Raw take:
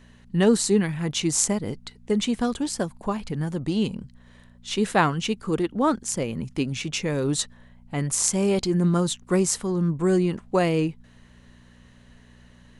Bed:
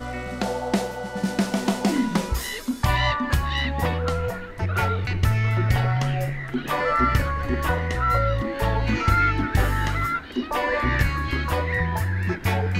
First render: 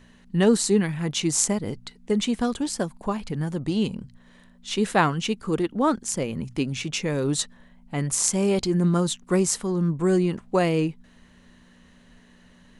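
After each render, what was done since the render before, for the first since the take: de-hum 60 Hz, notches 2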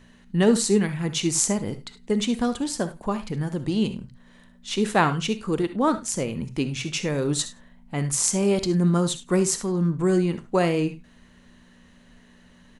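delay 102 ms -23.5 dB; gated-style reverb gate 90 ms rising, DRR 11 dB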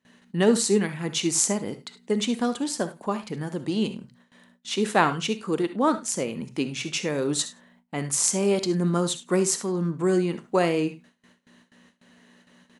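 high-pass 200 Hz 12 dB/octave; gate with hold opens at -46 dBFS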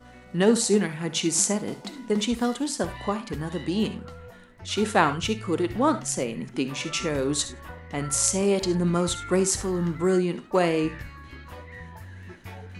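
add bed -18 dB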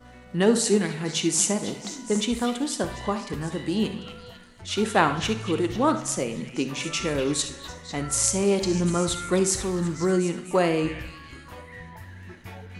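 repeats whose band climbs or falls 248 ms, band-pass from 2.7 kHz, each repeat 0.7 oct, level -8 dB; plate-style reverb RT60 1.1 s, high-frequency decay 0.8×, DRR 12 dB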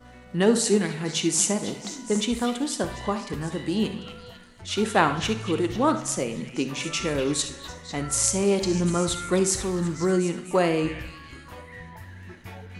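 no audible change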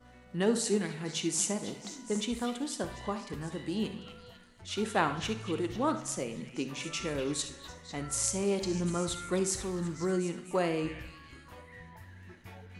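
trim -8 dB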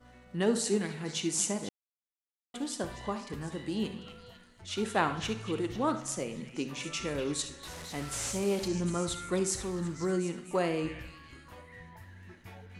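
1.69–2.54 s: mute; 7.63–8.68 s: one-bit delta coder 64 kbps, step -37.5 dBFS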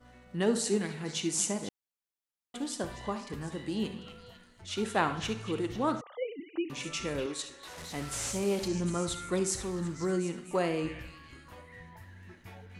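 6.01–6.70 s: formants replaced by sine waves; 7.26–7.78 s: tone controls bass -14 dB, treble -5 dB

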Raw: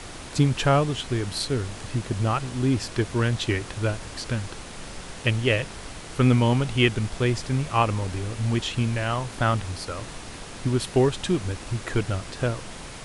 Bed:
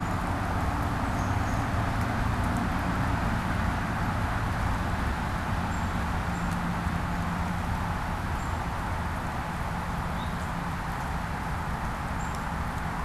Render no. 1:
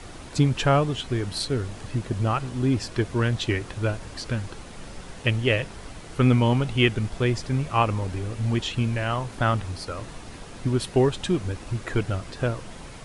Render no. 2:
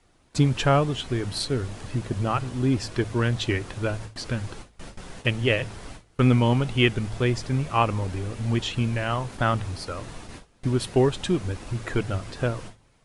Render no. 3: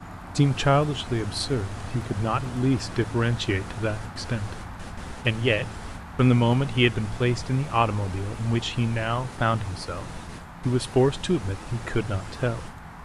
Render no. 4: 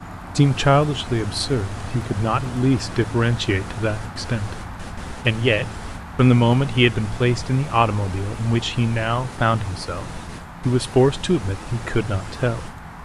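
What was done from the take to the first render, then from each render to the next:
noise reduction 6 dB, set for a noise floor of -40 dBFS
gate with hold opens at -28 dBFS; de-hum 54.64 Hz, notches 2
add bed -10.5 dB
trim +4.5 dB; peak limiter -3 dBFS, peak gain reduction 1 dB

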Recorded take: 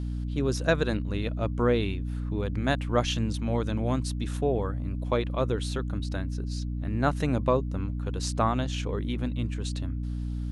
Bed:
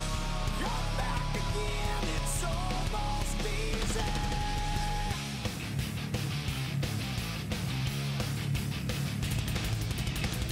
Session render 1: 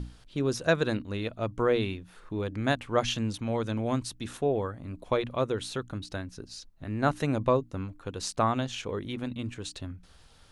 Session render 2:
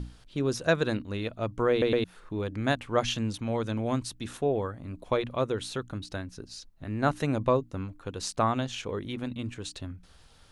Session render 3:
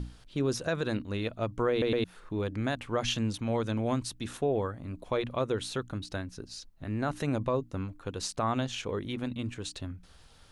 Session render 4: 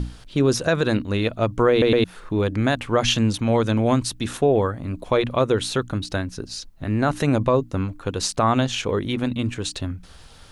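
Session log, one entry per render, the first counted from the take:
hum notches 60/120/180/240/300 Hz
1.71 s: stutter in place 0.11 s, 3 plays
peak limiter -19 dBFS, peak gain reduction 8.5 dB
trim +10.5 dB

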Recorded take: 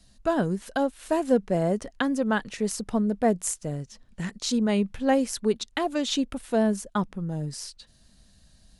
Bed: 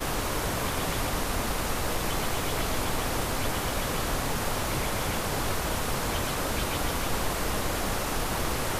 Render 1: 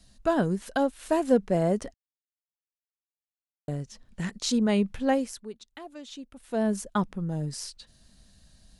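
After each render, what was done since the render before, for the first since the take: 1.94–3.68 s: mute; 4.99–6.81 s: dip -16 dB, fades 0.47 s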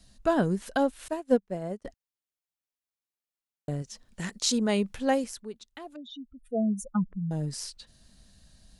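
1.08–1.85 s: upward expansion 2.5:1, over -37 dBFS; 3.82–5.24 s: tone controls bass -5 dB, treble +5 dB; 5.96–7.31 s: spectral contrast enhancement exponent 3.1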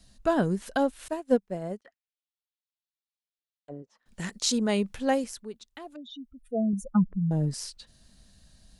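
1.81–4.06 s: auto-wah 360–3700 Hz, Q 2.3, down, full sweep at -29 dBFS; 6.73–7.54 s: tilt shelf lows +5 dB, about 1.4 kHz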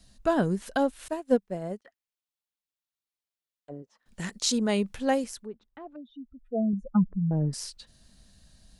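5.46–7.53 s: low-pass 1.4 kHz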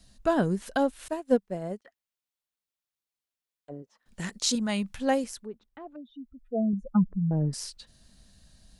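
4.55–5.00 s: peaking EQ 430 Hz -13.5 dB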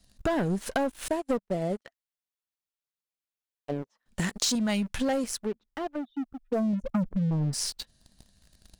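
waveshaping leveller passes 3; compression 5:1, threshold -26 dBFS, peak gain reduction 11 dB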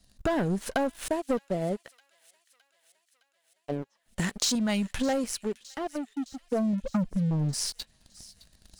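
feedback echo behind a high-pass 613 ms, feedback 64%, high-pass 2.6 kHz, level -17.5 dB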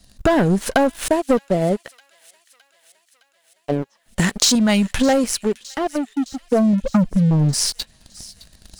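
trim +11 dB

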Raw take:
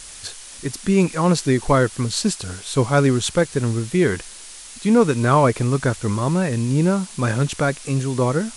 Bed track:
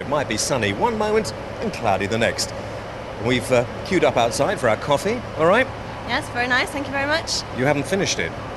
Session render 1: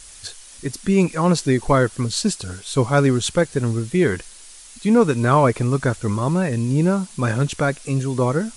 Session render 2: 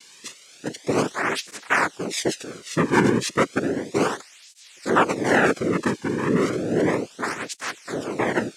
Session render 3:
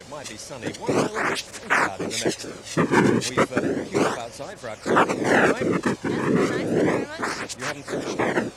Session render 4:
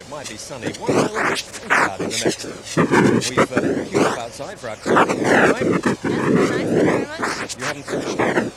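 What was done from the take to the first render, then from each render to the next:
noise reduction 6 dB, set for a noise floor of -39 dBFS
noise-vocoded speech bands 3; cancelling through-zero flanger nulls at 0.33 Hz, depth 1.6 ms
add bed track -15.5 dB
trim +4.5 dB; peak limiter -3 dBFS, peak gain reduction 2.5 dB

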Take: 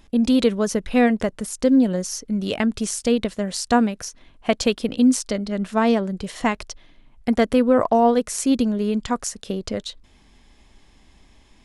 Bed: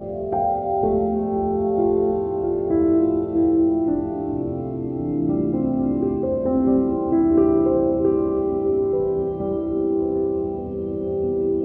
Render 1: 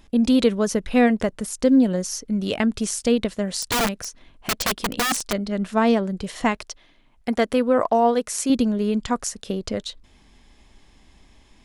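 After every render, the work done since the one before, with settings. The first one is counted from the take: 3.62–5.33 s: integer overflow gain 16 dB; 6.57–8.50 s: bass shelf 230 Hz -9 dB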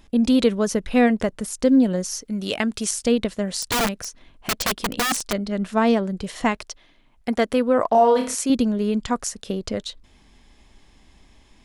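2.21–2.91 s: tilt EQ +1.5 dB/octave; 7.89–8.35 s: flutter echo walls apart 4.7 m, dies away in 0.42 s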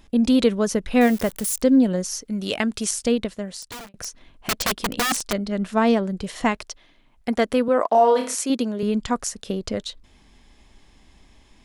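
1.01–1.62 s: zero-crossing glitches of -23 dBFS; 2.98–3.94 s: fade out linear; 7.68–8.83 s: high-pass 270 Hz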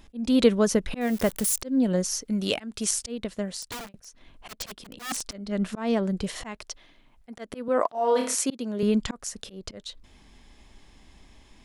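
slow attack 333 ms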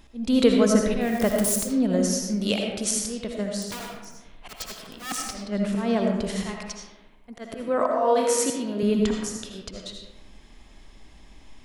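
algorithmic reverb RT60 1.1 s, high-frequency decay 0.5×, pre-delay 40 ms, DRR 1 dB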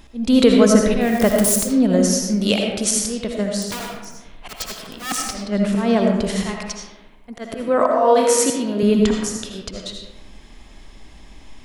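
trim +6.5 dB; peak limiter -1 dBFS, peak gain reduction 2.5 dB

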